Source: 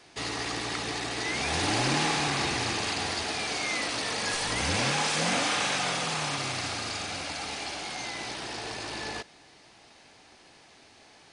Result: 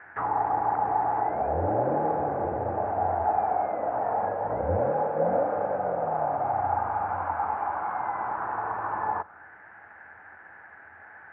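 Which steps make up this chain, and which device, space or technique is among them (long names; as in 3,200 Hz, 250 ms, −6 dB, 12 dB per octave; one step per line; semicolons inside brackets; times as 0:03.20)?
envelope filter bass rig (envelope-controlled low-pass 560–1,800 Hz down, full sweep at −25.5 dBFS; loudspeaker in its box 79–2,000 Hz, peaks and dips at 87 Hz +10 dB, 140 Hz −7 dB, 260 Hz −7 dB, 380 Hz −4 dB, 840 Hz +7 dB, 1,500 Hz +9 dB)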